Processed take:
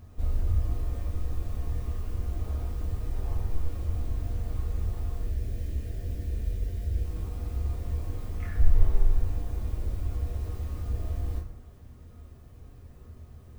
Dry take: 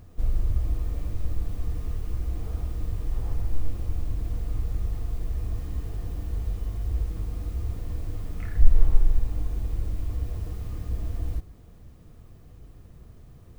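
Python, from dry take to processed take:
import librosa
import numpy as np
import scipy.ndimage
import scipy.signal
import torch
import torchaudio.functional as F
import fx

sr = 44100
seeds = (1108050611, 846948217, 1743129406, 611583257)

y = fx.band_shelf(x, sr, hz=1000.0, db=-12.5, octaves=1.0, at=(5.23, 7.05))
y = fx.rev_fdn(y, sr, rt60_s=0.81, lf_ratio=0.8, hf_ratio=0.65, size_ms=75.0, drr_db=-1.5)
y = F.gain(torch.from_numpy(y), -3.5).numpy()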